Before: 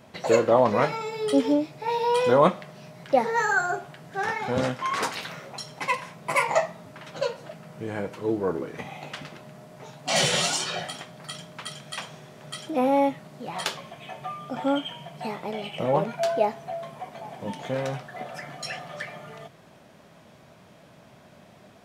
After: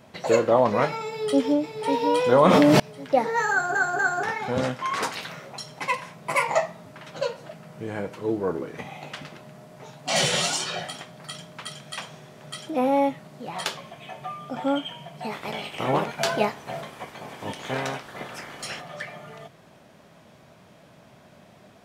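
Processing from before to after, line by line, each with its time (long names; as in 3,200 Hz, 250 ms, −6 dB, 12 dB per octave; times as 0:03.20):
0:01.08–0:01.75: delay throw 550 ms, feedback 45%, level −6 dB
0:02.32–0:02.80: envelope flattener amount 100%
0:03.51: stutter in place 0.24 s, 3 plays
0:15.31–0:18.80: ceiling on every frequency bin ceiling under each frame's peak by 16 dB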